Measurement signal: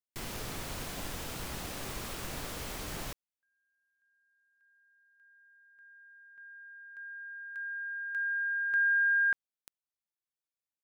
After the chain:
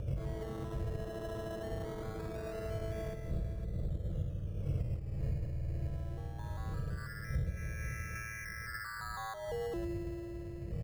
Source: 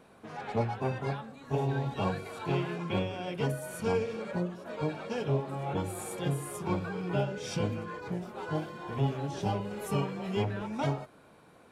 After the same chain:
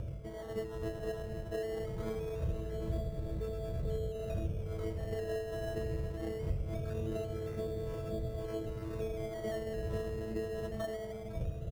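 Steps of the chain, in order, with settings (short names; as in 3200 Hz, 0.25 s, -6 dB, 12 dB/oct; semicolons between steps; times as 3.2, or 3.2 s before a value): chord vocoder bare fifth, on A3; wind noise 170 Hz -37 dBFS; fixed phaser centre 930 Hz, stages 6; spring tank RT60 3.9 s, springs 52 ms, chirp 35 ms, DRR 8.5 dB; dynamic EQ 240 Hz, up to -4 dB, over -50 dBFS, Q 1.5; compressor 12:1, threshold -38 dBFS; notch comb 380 Hz; upward compressor, threshold -45 dBFS; on a send: echo 0.511 s -9.5 dB; on the sum: decimation with a swept rate 15×, swing 60% 0.22 Hz; tilt shelf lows +7 dB; gain +1.5 dB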